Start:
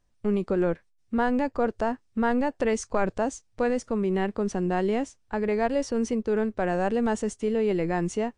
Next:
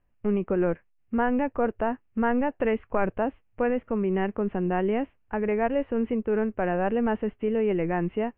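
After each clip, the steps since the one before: steep low-pass 2900 Hz 72 dB/oct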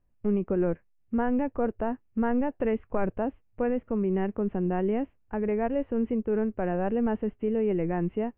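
tilt shelf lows +4.5 dB, about 700 Hz; gain -4 dB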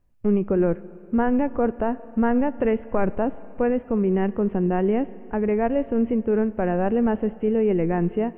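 Schroeder reverb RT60 3.2 s, combs from 27 ms, DRR 17.5 dB; gain +5.5 dB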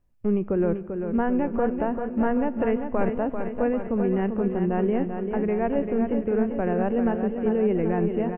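feedback echo 0.392 s, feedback 60%, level -7 dB; gain -3 dB

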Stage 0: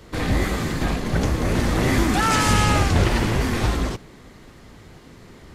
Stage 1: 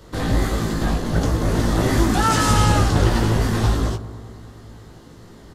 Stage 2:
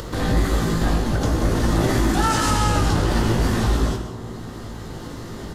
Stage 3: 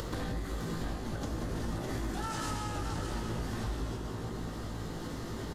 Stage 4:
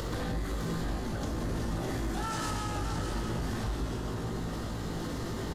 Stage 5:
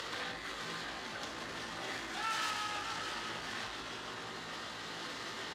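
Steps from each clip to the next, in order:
bell 2300 Hz -9 dB 0.49 oct; doubler 18 ms -5 dB; analogue delay 0.1 s, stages 1024, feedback 78%, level -17.5 dB
upward compressor, threshold -23 dBFS; limiter -11 dBFS, peak gain reduction 6.5 dB; non-linear reverb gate 0.21 s flat, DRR 5.5 dB
compressor 10:1, threshold -27 dBFS, peak gain reduction 13.5 dB; on a send: echo 0.608 s -8 dB; on the sum: gain -5.5 dB
in parallel at -1 dB: limiter -34.5 dBFS, peak gain reduction 10.5 dB; on the sum: soft clip -24 dBFS, distortion -23 dB; doubler 42 ms -11.5 dB
self-modulated delay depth 0.078 ms; band-pass 2700 Hz, Q 0.93; gain +5.5 dB

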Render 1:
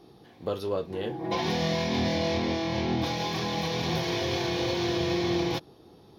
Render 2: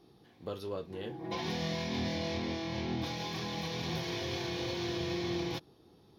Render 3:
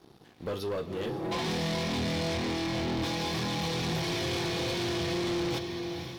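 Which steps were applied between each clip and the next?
bell 650 Hz -3.5 dB 1.5 oct; gain -6.5 dB
diffused feedback echo 0.496 s, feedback 41%, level -10 dB; sample leveller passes 3; gain -2.5 dB

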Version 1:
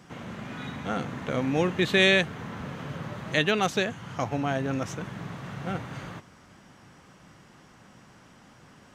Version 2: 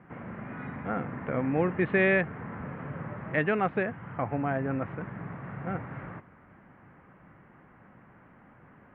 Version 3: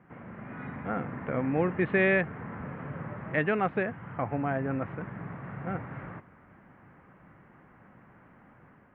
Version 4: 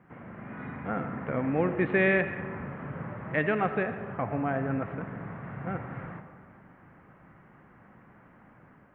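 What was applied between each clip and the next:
steep low-pass 2200 Hz 36 dB/oct; gain -1.5 dB
AGC gain up to 4 dB; gain -4.5 dB
digital reverb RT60 1.8 s, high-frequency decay 0.45×, pre-delay 35 ms, DRR 9 dB

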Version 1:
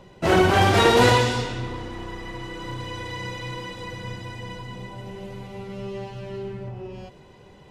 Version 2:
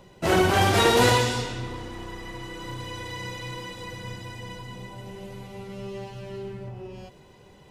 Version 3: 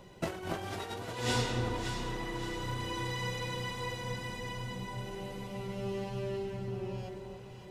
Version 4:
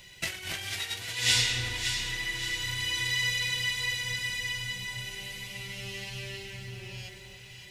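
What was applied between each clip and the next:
high shelf 7000 Hz +10 dB; gain -3 dB
negative-ratio compressor -26 dBFS, ratio -0.5; on a send: echo with dull and thin repeats by turns 0.284 s, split 1200 Hz, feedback 64%, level -4 dB; on the sum: gain -6.5 dB
EQ curve 120 Hz 0 dB, 200 Hz -9 dB, 480 Hz -9 dB, 1200 Hz -5 dB, 2000 Hz +14 dB; gain -1.5 dB

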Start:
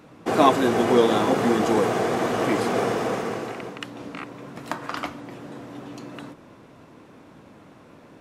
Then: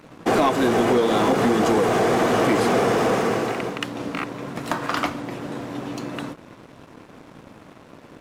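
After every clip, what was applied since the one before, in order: compressor 6:1, threshold -21 dBFS, peak gain reduction 10 dB; sample leveller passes 2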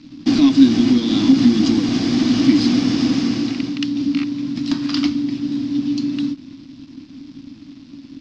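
EQ curve 200 Hz 0 dB, 280 Hz +14 dB, 420 Hz -21 dB, 660 Hz -18 dB, 990 Hz -15 dB, 1500 Hz -13 dB, 5000 Hz +10 dB, 11000 Hz -29 dB; gain +2.5 dB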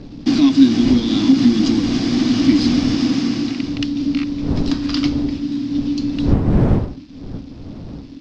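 wind noise 200 Hz -24 dBFS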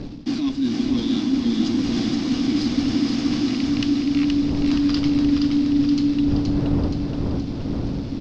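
reverse; compressor 10:1, threshold -24 dBFS, peak gain reduction 18.5 dB; reverse; feedback echo 0.473 s, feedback 59%, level -4 dB; gain +4 dB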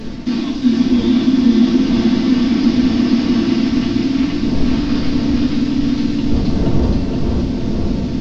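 delta modulation 32 kbps, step -37 dBFS; reverb RT60 0.75 s, pre-delay 4 ms, DRR -3 dB; gain +1.5 dB

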